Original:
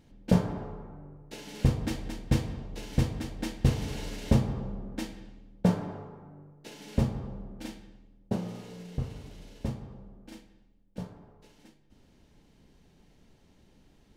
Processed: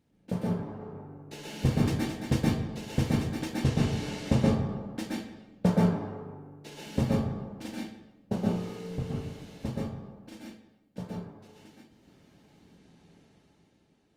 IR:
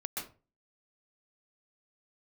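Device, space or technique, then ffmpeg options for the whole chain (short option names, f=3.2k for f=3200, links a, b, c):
far-field microphone of a smart speaker: -filter_complex "[0:a]asettb=1/sr,asplit=3[a][b][c];[a]atrim=end=3.574[d];[b]atrim=start=3.57:end=4.79,asetpts=PTS-STARTPTS,afade=t=in:d=0.004:c=qsin,afade=t=out:st=1.216:d=0.004:c=qsin,lowpass=10k[e];[c]atrim=start=4.786[f];[d][e]acrossfade=d=0.004:c1=hsin:c2=qsin[g];[g][f]acrossfade=d=0.004:c1=qsin:c2=hsin[h];[1:a]atrim=start_sample=2205[i];[h][i]afir=irnorm=-1:irlink=0,highpass=85,dynaudnorm=f=130:g=13:m=9.5dB,volume=-7dB" -ar 48000 -c:a libopus -b:a 32k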